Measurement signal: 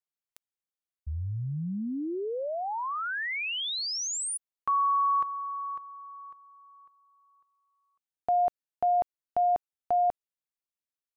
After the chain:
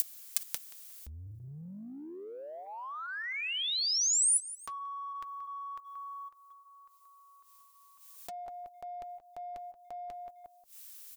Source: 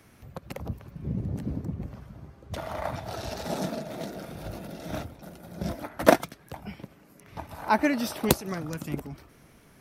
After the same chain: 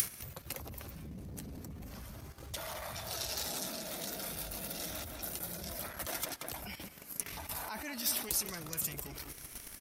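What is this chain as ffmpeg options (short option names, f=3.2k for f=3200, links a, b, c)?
-filter_complex "[0:a]adynamicequalizer=threshold=0.0158:dfrequency=700:dqfactor=0.9:tfrequency=700:tqfactor=0.9:attack=5:release=100:ratio=0.375:range=3:mode=cutabove:tftype=bell,asplit=2[a][b];[b]adelay=179,lowpass=f=3.1k:p=1,volume=-14dB,asplit=2[c][d];[d]adelay=179,lowpass=f=3.1k:p=1,volume=0.27,asplit=2[e][f];[f]adelay=179,lowpass=f=3.1k:p=1,volume=0.27[g];[a][c][e][g]amix=inputs=4:normalize=0,asubboost=boost=2:cutoff=77,asplit=2[h][i];[i]acompressor=mode=upward:threshold=-33dB:ratio=4:attack=55:release=97:knee=2.83:detection=peak,volume=-1dB[j];[h][j]amix=inputs=2:normalize=0,flanger=delay=1.7:depth=2.7:regen=-70:speed=0.34:shape=sinusoidal,agate=range=-11dB:threshold=-40dB:ratio=16:release=57:detection=rms,volume=6.5dB,asoftclip=hard,volume=-6.5dB,areverse,acompressor=threshold=-37dB:ratio=8:attack=2.5:release=22:knee=6:detection=peak,areverse,crystalizer=i=7.5:c=0,volume=-7dB"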